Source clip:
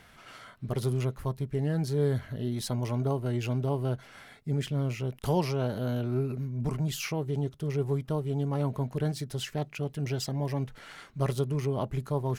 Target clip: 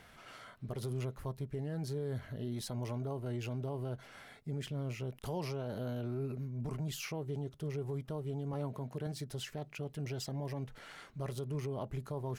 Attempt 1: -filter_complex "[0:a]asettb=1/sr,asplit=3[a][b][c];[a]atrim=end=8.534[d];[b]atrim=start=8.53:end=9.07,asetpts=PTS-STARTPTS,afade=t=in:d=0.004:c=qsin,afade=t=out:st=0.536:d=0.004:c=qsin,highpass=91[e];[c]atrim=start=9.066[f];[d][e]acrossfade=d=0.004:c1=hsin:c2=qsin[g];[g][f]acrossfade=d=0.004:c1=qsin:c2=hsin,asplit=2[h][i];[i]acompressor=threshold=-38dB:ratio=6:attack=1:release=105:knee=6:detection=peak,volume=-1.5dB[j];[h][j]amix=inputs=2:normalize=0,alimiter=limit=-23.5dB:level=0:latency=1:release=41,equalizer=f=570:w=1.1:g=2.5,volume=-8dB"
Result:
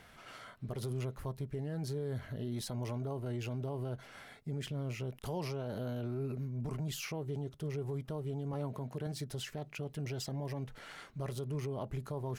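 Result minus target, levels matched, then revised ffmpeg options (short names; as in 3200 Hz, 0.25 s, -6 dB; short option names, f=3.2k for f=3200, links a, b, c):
compressor: peak gain reduction -7.5 dB
-filter_complex "[0:a]asettb=1/sr,asplit=3[a][b][c];[a]atrim=end=8.534[d];[b]atrim=start=8.53:end=9.07,asetpts=PTS-STARTPTS,afade=t=in:d=0.004:c=qsin,afade=t=out:st=0.536:d=0.004:c=qsin,highpass=91[e];[c]atrim=start=9.066[f];[d][e]acrossfade=d=0.004:c1=hsin:c2=qsin[g];[g][f]acrossfade=d=0.004:c1=qsin:c2=hsin,asplit=2[h][i];[i]acompressor=threshold=-47dB:ratio=6:attack=1:release=105:knee=6:detection=peak,volume=-1.5dB[j];[h][j]amix=inputs=2:normalize=0,alimiter=limit=-23.5dB:level=0:latency=1:release=41,equalizer=f=570:w=1.1:g=2.5,volume=-8dB"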